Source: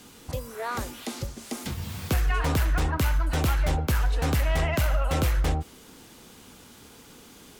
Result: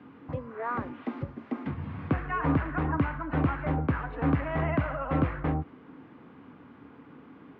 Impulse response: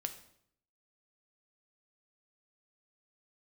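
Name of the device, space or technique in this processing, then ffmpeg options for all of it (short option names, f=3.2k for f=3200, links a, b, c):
bass cabinet: -af "highpass=f=78:w=0.5412,highpass=f=78:w=1.3066,equalizer=f=150:t=q:w=4:g=5,equalizer=f=280:t=q:w=4:g=10,equalizer=f=1.1k:t=q:w=4:g=5,lowpass=f=2.1k:w=0.5412,lowpass=f=2.1k:w=1.3066,volume=-2.5dB"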